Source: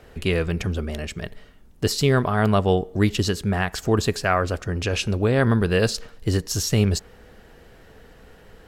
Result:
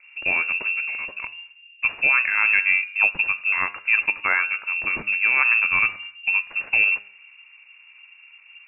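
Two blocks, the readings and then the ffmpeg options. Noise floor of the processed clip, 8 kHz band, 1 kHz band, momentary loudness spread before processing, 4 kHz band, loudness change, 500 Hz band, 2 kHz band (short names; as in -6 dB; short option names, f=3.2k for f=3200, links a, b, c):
-51 dBFS, under -40 dB, -3.5 dB, 9 LU, n/a, +3.0 dB, -20.0 dB, +12.0 dB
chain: -af "adynamicsmooth=sensitivity=4.5:basefreq=690,lowpass=f=2.4k:t=q:w=0.5098,lowpass=f=2.4k:t=q:w=0.6013,lowpass=f=2.4k:t=q:w=0.9,lowpass=f=2.4k:t=q:w=2.563,afreqshift=-2800,bandreject=f=101.4:t=h:w=4,bandreject=f=202.8:t=h:w=4,bandreject=f=304.2:t=h:w=4,bandreject=f=405.6:t=h:w=4,bandreject=f=507:t=h:w=4,bandreject=f=608.4:t=h:w=4,bandreject=f=709.8:t=h:w=4,bandreject=f=811.2:t=h:w=4,bandreject=f=912.6:t=h:w=4,bandreject=f=1.014k:t=h:w=4,bandreject=f=1.1154k:t=h:w=4,bandreject=f=1.2168k:t=h:w=4,bandreject=f=1.3182k:t=h:w=4,bandreject=f=1.4196k:t=h:w=4,bandreject=f=1.521k:t=h:w=4,bandreject=f=1.6224k:t=h:w=4,bandreject=f=1.7238k:t=h:w=4,bandreject=f=1.8252k:t=h:w=4,bandreject=f=1.9266k:t=h:w=4,bandreject=f=2.028k:t=h:w=4,bandreject=f=2.1294k:t=h:w=4,bandreject=f=2.2308k:t=h:w=4,bandreject=f=2.3322k:t=h:w=4,bandreject=f=2.4336k:t=h:w=4,bandreject=f=2.535k:t=h:w=4,bandreject=f=2.6364k:t=h:w=4,bandreject=f=2.7378k:t=h:w=4,bandreject=f=2.8392k:t=h:w=4,bandreject=f=2.9406k:t=h:w=4"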